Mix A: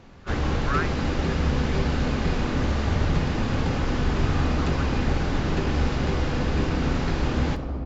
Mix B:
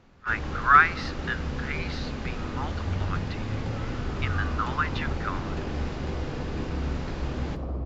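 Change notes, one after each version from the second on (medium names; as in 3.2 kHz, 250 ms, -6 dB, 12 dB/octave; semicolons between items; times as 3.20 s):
speech +12.0 dB; first sound -8.5 dB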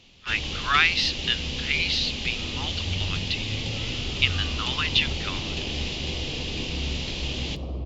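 speech: send off; first sound: send -6.0 dB; master: add resonant high shelf 2.1 kHz +12.5 dB, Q 3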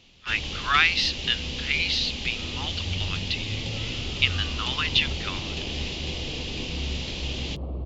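reverb: off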